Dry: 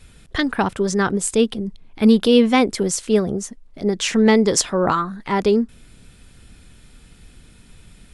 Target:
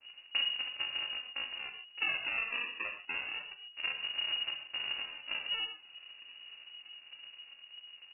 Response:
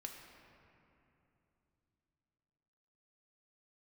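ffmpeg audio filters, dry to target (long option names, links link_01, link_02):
-filter_complex "[0:a]tiltshelf=frequency=680:gain=-3.5,acompressor=threshold=-26dB:ratio=6,aresample=8000,acrusher=samples=22:mix=1:aa=0.000001:lfo=1:lforange=22:lforate=0.28,aresample=44100[link_01];[1:a]atrim=start_sample=2205,atrim=end_sample=6615[link_02];[link_01][link_02]afir=irnorm=-1:irlink=0,lowpass=frequency=2500:width_type=q:width=0.5098,lowpass=frequency=2500:width_type=q:width=0.6013,lowpass=frequency=2500:width_type=q:width=0.9,lowpass=frequency=2500:width_type=q:width=2.563,afreqshift=-2900,adynamicequalizer=threshold=0.00398:dfrequency=1800:dqfactor=0.7:tfrequency=1800:tqfactor=0.7:attack=5:release=100:ratio=0.375:range=3:mode=cutabove:tftype=highshelf"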